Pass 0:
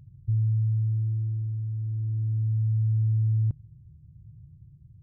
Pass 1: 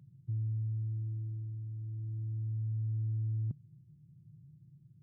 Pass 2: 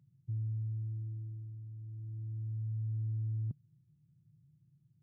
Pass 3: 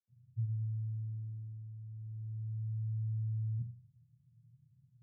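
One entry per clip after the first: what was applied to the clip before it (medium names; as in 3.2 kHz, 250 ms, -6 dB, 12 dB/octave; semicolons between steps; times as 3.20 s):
high-pass 150 Hz 24 dB/octave; bass shelf 280 Hz +8.5 dB; trim -6.5 dB
upward expansion 1.5:1, over -48 dBFS; trim -1.5 dB
reverberation RT60 0.25 s, pre-delay 76 ms; trim +4.5 dB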